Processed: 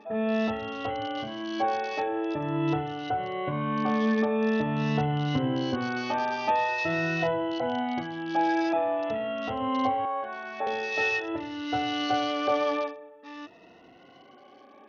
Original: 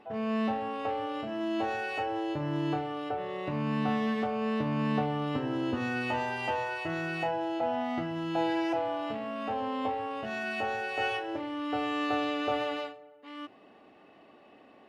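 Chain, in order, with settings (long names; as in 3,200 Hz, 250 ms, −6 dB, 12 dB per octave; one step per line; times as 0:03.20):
rippled gain that drifts along the octave scale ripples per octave 2, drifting +0.46 Hz, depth 20 dB
0:10.05–0:10.67: three-way crossover with the lows and the highs turned down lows −18 dB, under 380 Hz, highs −20 dB, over 2,300 Hz
SBC 64 kbit/s 48,000 Hz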